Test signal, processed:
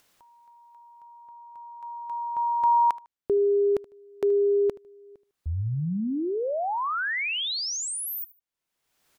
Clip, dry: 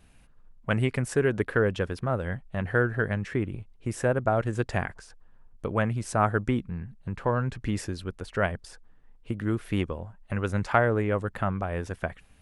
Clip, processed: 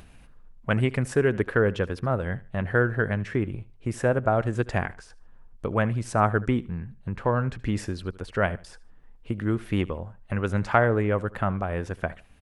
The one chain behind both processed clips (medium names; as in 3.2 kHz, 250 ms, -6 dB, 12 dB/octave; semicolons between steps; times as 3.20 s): treble shelf 5.4 kHz -5.5 dB; on a send: feedback delay 76 ms, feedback 27%, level -20 dB; on the sum: upward compressor, threshold -45 dBFS; trim +2 dB